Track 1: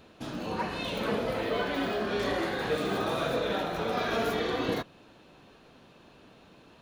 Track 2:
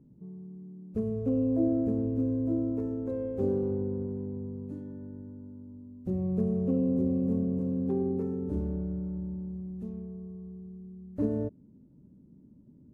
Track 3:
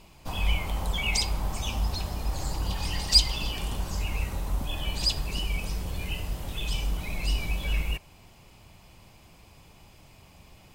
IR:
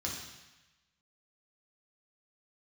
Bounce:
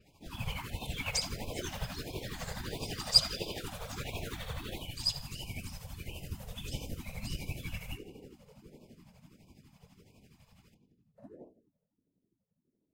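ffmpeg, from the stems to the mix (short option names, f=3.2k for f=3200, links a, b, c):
-filter_complex "[0:a]acrusher=bits=5:mode=log:mix=0:aa=0.000001,adynamicequalizer=threshold=0.00562:dfrequency=1600:dqfactor=0.7:tfrequency=1600:tqfactor=0.7:attack=5:release=100:ratio=0.375:range=3:mode=boostabove:tftype=highshelf,volume=-6dB[a];[1:a]highpass=360,volume=-6.5dB,asplit=2[b][c];[c]volume=-16.5dB[d];[2:a]adynamicequalizer=threshold=0.00631:dfrequency=4900:dqfactor=0.7:tfrequency=4900:tqfactor=0.7:attack=5:release=100:ratio=0.375:range=2.5:mode=boostabove:tftype=highshelf,volume=-3dB,asplit=2[e][f];[f]volume=-12dB[g];[3:a]atrim=start_sample=2205[h];[d][g]amix=inputs=2:normalize=0[i];[i][h]afir=irnorm=-1:irlink=0[j];[a][b][e][j]amix=inputs=4:normalize=0,tremolo=f=12:d=0.6,afftfilt=real='hypot(re,im)*cos(2*PI*random(0))':imag='hypot(re,im)*sin(2*PI*random(1))':win_size=512:overlap=0.75,afftfilt=real='re*(1-between(b*sr/1024,290*pow(1600/290,0.5+0.5*sin(2*PI*1.5*pts/sr))/1.41,290*pow(1600/290,0.5+0.5*sin(2*PI*1.5*pts/sr))*1.41))':imag='im*(1-between(b*sr/1024,290*pow(1600/290,0.5+0.5*sin(2*PI*1.5*pts/sr))/1.41,290*pow(1600/290,0.5+0.5*sin(2*PI*1.5*pts/sr))*1.41))':win_size=1024:overlap=0.75"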